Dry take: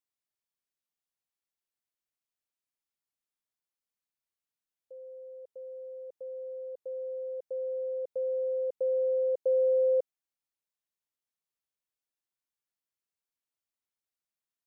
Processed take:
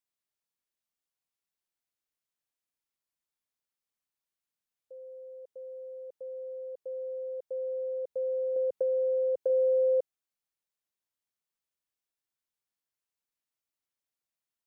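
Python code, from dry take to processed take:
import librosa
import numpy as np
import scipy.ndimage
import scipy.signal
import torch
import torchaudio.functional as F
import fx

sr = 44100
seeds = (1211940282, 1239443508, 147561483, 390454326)

y = fx.band_squash(x, sr, depth_pct=100, at=(8.56, 9.5))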